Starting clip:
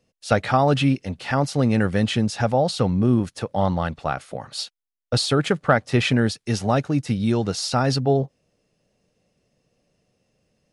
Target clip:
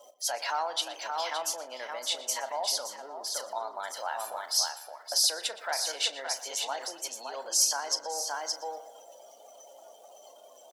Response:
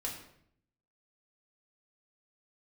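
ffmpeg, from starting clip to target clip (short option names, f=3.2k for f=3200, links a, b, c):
-filter_complex "[0:a]aeval=exprs='val(0)+0.5*0.0251*sgn(val(0))':c=same,asetrate=50951,aresample=44100,atempo=0.865537,afftdn=nr=26:nf=-37,equalizer=f=2.1k:w=0.7:g=-14,asplit=2[a][b];[b]adelay=35,volume=-12dB[c];[a][c]amix=inputs=2:normalize=0,asplit=2[d][e];[e]aecho=0:1:569:0.447[f];[d][f]amix=inputs=2:normalize=0,alimiter=limit=-19dB:level=0:latency=1:release=87,highpass=f=590:w=0.5412,highpass=f=590:w=1.3066,tiltshelf=f=930:g=-7,asplit=2[g][h];[h]adelay=119,lowpass=f=3.4k:p=1,volume=-14dB,asplit=2[i][j];[j]adelay=119,lowpass=f=3.4k:p=1,volume=0.54,asplit=2[k][l];[l]adelay=119,lowpass=f=3.4k:p=1,volume=0.54,asplit=2[m][n];[n]adelay=119,lowpass=f=3.4k:p=1,volume=0.54,asplit=2[o][p];[p]adelay=119,lowpass=f=3.4k:p=1,volume=0.54[q];[i][k][m][o][q]amix=inputs=5:normalize=0[r];[g][r]amix=inputs=2:normalize=0"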